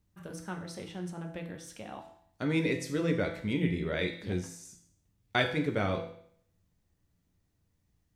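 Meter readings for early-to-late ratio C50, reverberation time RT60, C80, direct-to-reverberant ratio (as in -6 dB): 8.5 dB, 0.65 s, 11.5 dB, 3.0 dB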